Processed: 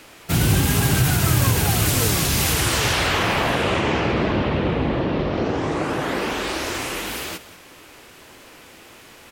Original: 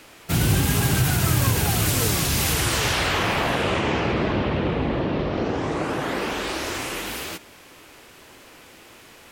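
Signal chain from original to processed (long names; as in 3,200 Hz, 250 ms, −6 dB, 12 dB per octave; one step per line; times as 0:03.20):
single-tap delay 185 ms −16.5 dB
level +2 dB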